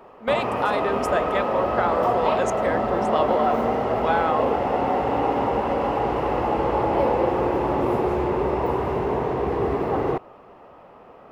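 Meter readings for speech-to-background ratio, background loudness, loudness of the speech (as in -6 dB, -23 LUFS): -3.0 dB, -23.5 LUFS, -26.5 LUFS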